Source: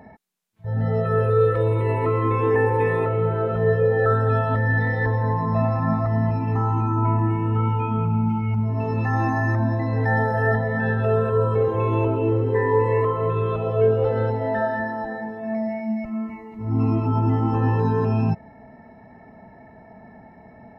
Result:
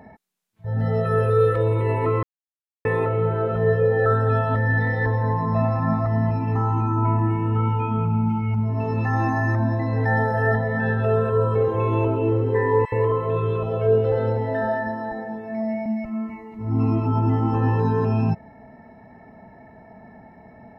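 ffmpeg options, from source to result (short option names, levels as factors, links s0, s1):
-filter_complex "[0:a]asettb=1/sr,asplit=3[s0][s1][s2];[s0]atrim=end=0.794[s3];[s1]atrim=start=0.79:end=1.56,asetpts=PTS-STARTPTS,afade=t=in:d=0.004:c=qsin,afade=t=out:st=0.766:d=0.004:c=qsin,highshelf=f=4400:g=8.5[s4];[s2]atrim=start=1.556[s5];[s3][s4]acrossfade=d=0.004:c1=hsin:c2=qsin[s6];[s6][s5]acrossfade=d=0.004:c1=qsin:c2=hsin,asettb=1/sr,asplit=3[s7][s8][s9];[s7]atrim=end=12.854[s10];[s8]atrim=start=12.85:end=15.86,asetpts=PTS-STARTPTS,afade=t=in:d=0.004:c=qsin,afade=t=out:st=3.006:d=0.004:c=qsin,acrossover=split=1300[s11][s12];[s11]adelay=70[s13];[s13][s12]amix=inputs=2:normalize=0,atrim=end_sample=132741[s14];[s9]atrim=start=15.856[s15];[s10][s14]acrossfade=d=0.004:c1=hsin:c2=qsin[s16];[s16][s15]acrossfade=d=0.004:c1=qsin:c2=hsin,asplit=3[s17][s18][s19];[s17]atrim=end=2.23,asetpts=PTS-STARTPTS,afade=t=out:st=2.226:d=0.004:c=hsin[s20];[s18]atrim=start=2.23:end=2.85,asetpts=PTS-STARTPTS,volume=0[s21];[s19]atrim=start=2.85,asetpts=PTS-STARTPTS,afade=t=in:d=0.004:c=hsin[s22];[s20][s21][s22]concat=n=3:v=0:a=1"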